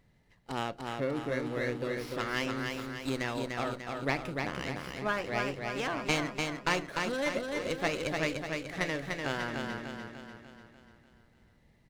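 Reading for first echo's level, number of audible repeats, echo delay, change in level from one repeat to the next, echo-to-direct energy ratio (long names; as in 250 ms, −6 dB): −4.0 dB, 6, 296 ms, −5.5 dB, −2.5 dB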